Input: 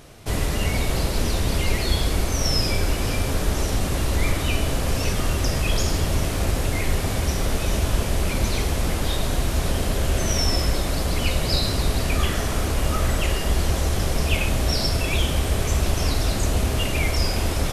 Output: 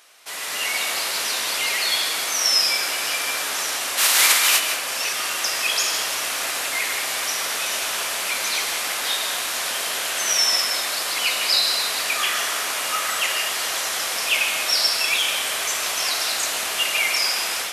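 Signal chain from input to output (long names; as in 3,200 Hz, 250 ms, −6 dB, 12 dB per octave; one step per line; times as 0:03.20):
0:03.97–0:04.58: compressing power law on the bin magnitudes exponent 0.52
high-pass filter 1,200 Hz 12 dB per octave
automatic gain control gain up to 7 dB
convolution reverb RT60 0.45 s, pre-delay 141 ms, DRR 6.5 dB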